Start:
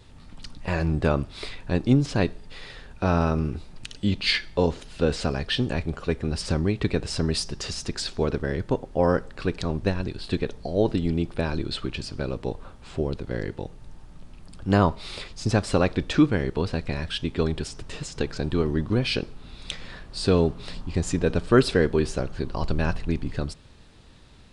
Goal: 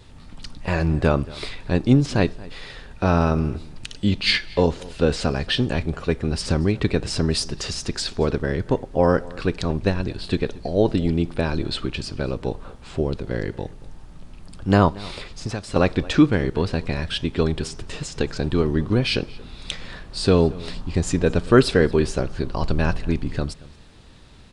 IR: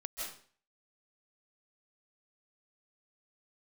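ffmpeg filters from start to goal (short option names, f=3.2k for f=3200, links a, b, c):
-filter_complex "[0:a]asettb=1/sr,asplit=3[a][b][c];[a]atrim=end=14.884[d];[b]atrim=start=14.88:end=15.76,asetpts=PTS-STARTPTS,afade=t=in:d=0.004:c=qsin,afade=t=out:st=0.876:d=0.004:c=qsin,acrossover=split=620|2500[e][f][g];[e]acompressor=threshold=-31dB:ratio=4[h];[f]acompressor=threshold=-41dB:ratio=4[i];[g]acompressor=threshold=-42dB:ratio=4[j];[h][i][j]amix=inputs=3:normalize=0[k];[c]atrim=start=15.756[l];[d][k]acrossfade=d=0.004:c1=hsin:c2=qsin[m];[m][l]acrossfade=d=0.004:c1=qsin:c2=hsin,asplit=2[n][o];[o]adelay=227.4,volume=-21dB,highshelf=f=4k:g=-5.12[p];[n][p]amix=inputs=2:normalize=0,volume=3.5dB"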